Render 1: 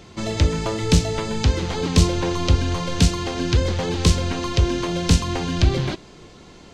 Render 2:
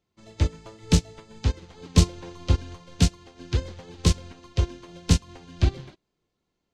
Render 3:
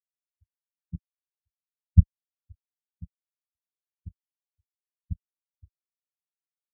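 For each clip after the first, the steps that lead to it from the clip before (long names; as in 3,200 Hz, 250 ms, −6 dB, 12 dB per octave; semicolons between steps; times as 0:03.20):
expander for the loud parts 2.5 to 1, over −33 dBFS
harmonic generator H 3 −15 dB, 4 −12 dB, 6 −19 dB, 7 −22 dB, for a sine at −3 dBFS; flanger swept by the level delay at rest 3.5 ms, full sweep at −22 dBFS; every bin expanded away from the loudest bin 4 to 1; level +1 dB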